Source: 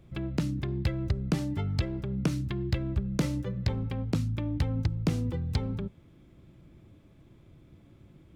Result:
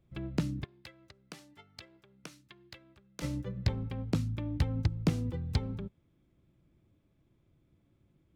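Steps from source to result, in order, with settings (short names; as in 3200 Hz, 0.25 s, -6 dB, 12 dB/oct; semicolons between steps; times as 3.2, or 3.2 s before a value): 0.64–3.22 HPF 1400 Hz 6 dB/oct; upward expander 1.5:1, over -50 dBFS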